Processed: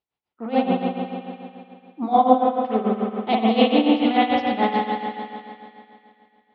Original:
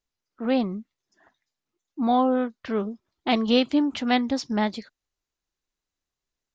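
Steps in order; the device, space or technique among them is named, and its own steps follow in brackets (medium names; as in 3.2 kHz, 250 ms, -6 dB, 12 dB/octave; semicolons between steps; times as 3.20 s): combo amplifier with spring reverb and tremolo (spring tank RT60 2.5 s, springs 54 ms, chirp 40 ms, DRR -6 dB; tremolo 6.9 Hz, depth 79%; cabinet simulation 81–3700 Hz, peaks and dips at 260 Hz -4 dB, 800 Hz +6 dB, 1.6 kHz -6 dB); 2.30–3.54 s: dynamic bell 1.6 kHz, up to -5 dB, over -30 dBFS, Q 0.84; band-passed feedback delay 250 ms, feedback 53%, band-pass 2.2 kHz, level -12 dB; trim +1.5 dB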